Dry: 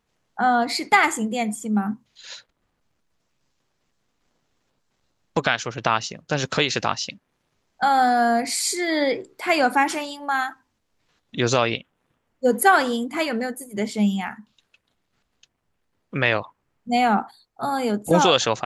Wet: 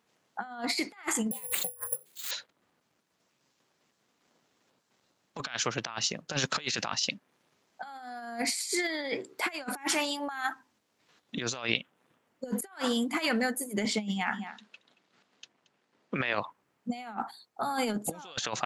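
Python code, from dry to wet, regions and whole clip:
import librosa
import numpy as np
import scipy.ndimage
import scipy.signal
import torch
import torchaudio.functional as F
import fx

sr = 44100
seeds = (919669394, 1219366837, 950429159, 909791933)

y = fx.chain(x, sr, fx.peak_eq(hz=5200.0, db=-4.0, octaves=0.24),
    fx.resample_bad(factor=4, down='none', up='zero_stuff'),
    fx.ring_mod(carrier_hz=280.0), at=(1.31, 2.31))
y = fx.chain(y, sr, fx.bandpass_edges(low_hz=140.0, high_hz=6500.0),
    fx.over_compress(threshold_db=-25.0, ratio=-0.5),
    fx.echo_single(ms=227, db=-18.5), at=(13.85, 16.34))
y = scipy.signal.sosfilt(scipy.signal.butter(2, 180.0, 'highpass', fs=sr, output='sos'), y)
y = fx.dynamic_eq(y, sr, hz=420.0, q=0.79, threshold_db=-34.0, ratio=4.0, max_db=-7)
y = fx.over_compress(y, sr, threshold_db=-29.0, ratio=-0.5)
y = y * librosa.db_to_amplitude(-3.0)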